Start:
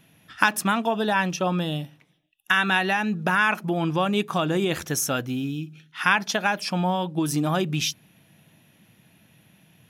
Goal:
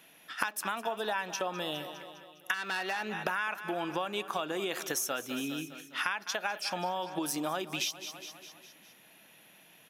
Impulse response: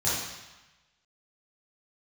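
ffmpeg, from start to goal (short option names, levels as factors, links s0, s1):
-filter_complex "[0:a]equalizer=f=14000:w=3.9:g=6,asplit=2[s0][s1];[s1]aecho=0:1:204|408|612|816|1020:0.141|0.0777|0.0427|0.0235|0.0129[s2];[s0][s2]amix=inputs=2:normalize=0,asettb=1/sr,asplit=3[s3][s4][s5];[s3]atrim=end=2.544[s6];[s4]atrim=start=2.54:end=3.13,asetpts=PTS-STARTPTS,afade=t=in:d=0.004:c=qsin,afade=t=out:st=0.586:d=0.004:c=qsin,aeval=exprs='(tanh(10*val(0)+0.5)-tanh(0.5))/10':c=same[s7];[s5]atrim=start=3.126[s8];[s6][s7]acrossfade=d=0.004:c1=hsin:c2=qsin[s9];[s9][s8]acrossfade=d=0.004:c1=qsin:c2=hsin,highpass=420,acompressor=threshold=0.0224:ratio=6,volume=1.33"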